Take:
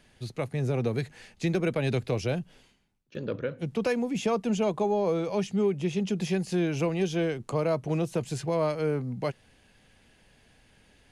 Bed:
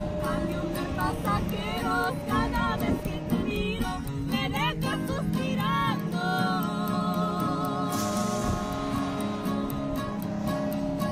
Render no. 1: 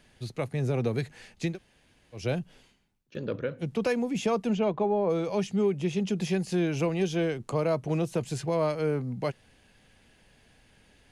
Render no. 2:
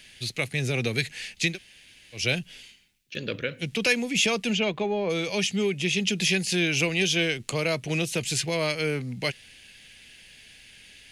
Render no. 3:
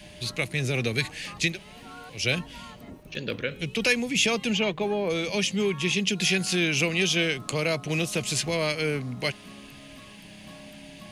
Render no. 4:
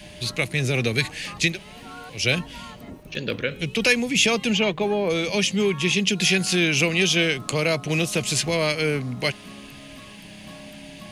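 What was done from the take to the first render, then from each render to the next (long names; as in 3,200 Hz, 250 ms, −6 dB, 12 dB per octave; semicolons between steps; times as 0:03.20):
0:01.51–0:02.20: fill with room tone, crossfade 0.16 s; 0:04.52–0:05.09: low-pass filter 3,900 Hz → 1,900 Hz
high shelf with overshoot 1,600 Hz +13.5 dB, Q 1.5
mix in bed −17.5 dB
level +4 dB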